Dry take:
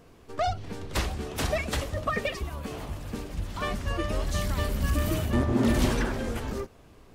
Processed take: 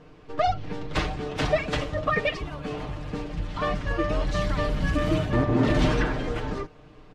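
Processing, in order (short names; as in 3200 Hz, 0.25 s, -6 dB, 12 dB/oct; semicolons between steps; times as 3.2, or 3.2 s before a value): LPF 4000 Hz 12 dB/oct; comb 6.6 ms; gain +2.5 dB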